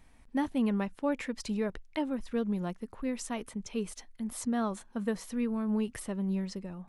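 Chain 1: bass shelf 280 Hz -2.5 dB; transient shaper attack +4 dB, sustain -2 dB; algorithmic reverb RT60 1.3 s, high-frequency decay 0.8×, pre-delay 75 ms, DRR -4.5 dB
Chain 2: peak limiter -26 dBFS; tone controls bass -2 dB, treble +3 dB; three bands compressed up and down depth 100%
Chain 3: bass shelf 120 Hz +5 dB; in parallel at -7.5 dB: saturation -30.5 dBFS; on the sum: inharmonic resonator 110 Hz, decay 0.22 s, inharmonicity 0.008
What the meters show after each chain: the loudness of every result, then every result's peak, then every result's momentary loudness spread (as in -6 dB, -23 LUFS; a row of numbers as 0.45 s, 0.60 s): -28.5 LUFS, -36.0 LUFS, -38.0 LUFS; -13.5 dBFS, -18.5 dBFS, -22.0 dBFS; 7 LU, 4 LU, 11 LU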